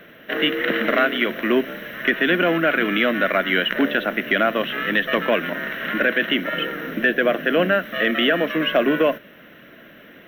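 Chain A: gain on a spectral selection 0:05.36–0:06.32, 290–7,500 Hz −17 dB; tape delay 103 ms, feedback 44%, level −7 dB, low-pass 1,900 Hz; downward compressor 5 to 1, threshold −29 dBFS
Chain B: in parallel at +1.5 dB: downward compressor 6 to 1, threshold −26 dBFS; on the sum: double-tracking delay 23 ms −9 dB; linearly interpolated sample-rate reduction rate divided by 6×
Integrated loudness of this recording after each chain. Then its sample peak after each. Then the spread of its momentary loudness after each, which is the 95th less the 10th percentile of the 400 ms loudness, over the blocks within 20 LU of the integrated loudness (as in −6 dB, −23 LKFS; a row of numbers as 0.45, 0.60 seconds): −31.5, −18.0 LKFS; −14.5, −3.5 dBFS; 6, 5 LU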